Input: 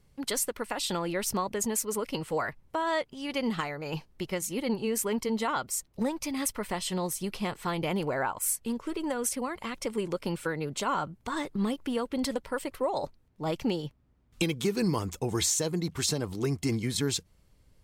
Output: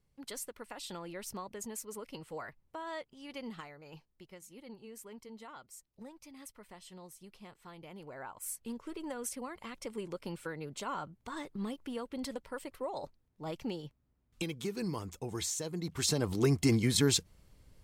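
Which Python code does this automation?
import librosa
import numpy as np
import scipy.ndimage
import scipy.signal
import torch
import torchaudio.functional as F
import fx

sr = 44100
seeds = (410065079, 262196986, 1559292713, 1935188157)

y = fx.gain(x, sr, db=fx.line((3.36, -12.5), (4.28, -20.0), (7.91, -20.0), (8.67, -9.0), (15.69, -9.0), (16.31, 2.0)))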